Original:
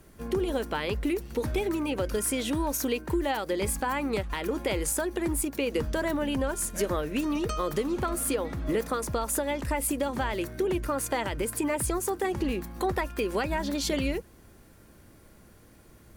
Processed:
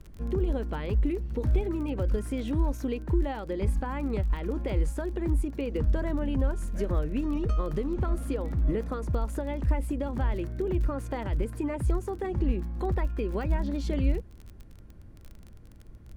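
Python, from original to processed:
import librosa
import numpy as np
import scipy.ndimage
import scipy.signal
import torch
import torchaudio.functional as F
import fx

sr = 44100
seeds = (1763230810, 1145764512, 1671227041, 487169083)

y = fx.riaa(x, sr, side='playback')
y = fx.dmg_crackle(y, sr, seeds[0], per_s=25.0, level_db=-31.0)
y = y * librosa.db_to_amplitude(-7.0)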